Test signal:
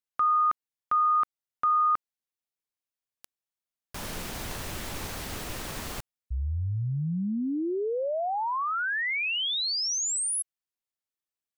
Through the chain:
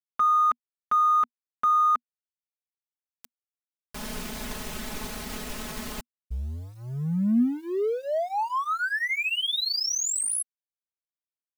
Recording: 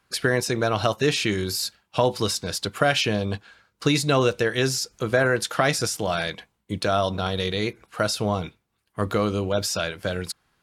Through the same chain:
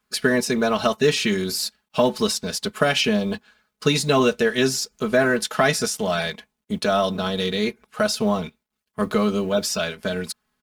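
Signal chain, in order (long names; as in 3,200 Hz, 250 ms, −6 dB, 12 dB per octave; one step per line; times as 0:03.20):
mu-law and A-law mismatch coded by A
parametric band 240 Hz +6.5 dB 0.26 octaves
comb filter 4.7 ms, depth 86%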